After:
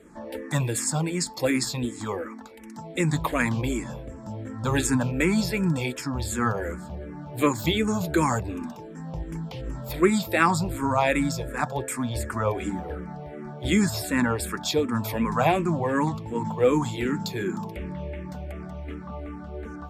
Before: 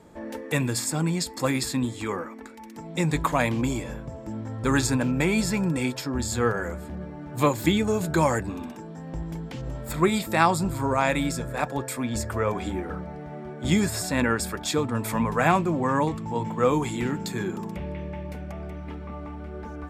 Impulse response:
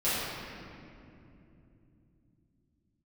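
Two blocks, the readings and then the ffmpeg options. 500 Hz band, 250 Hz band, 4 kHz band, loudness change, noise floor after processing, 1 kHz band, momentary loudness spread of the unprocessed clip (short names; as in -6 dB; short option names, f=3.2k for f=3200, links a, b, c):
0.0 dB, 0.0 dB, 0.0 dB, 0.0 dB, -41 dBFS, -1.0 dB, 14 LU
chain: -filter_complex "[0:a]asplit=2[a][b];[b]afreqshift=-2.7[c];[a][c]amix=inputs=2:normalize=1,volume=3dB"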